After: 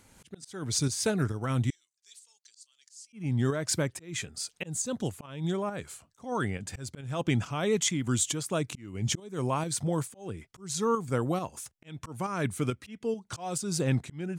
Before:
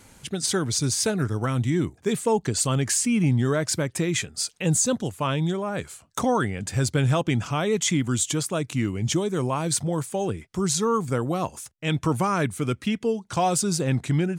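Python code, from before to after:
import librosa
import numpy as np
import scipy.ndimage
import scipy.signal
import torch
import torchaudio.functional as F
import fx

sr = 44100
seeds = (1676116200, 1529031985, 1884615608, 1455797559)

y = fx.ladder_bandpass(x, sr, hz=5900.0, resonance_pct=40, at=(1.7, 3.13))
y = fx.auto_swell(y, sr, attack_ms=332.0)
y = fx.volume_shaper(y, sr, bpm=137, per_beat=1, depth_db=-6, release_ms=183.0, shape='slow start')
y = y * librosa.db_to_amplitude(-3.0)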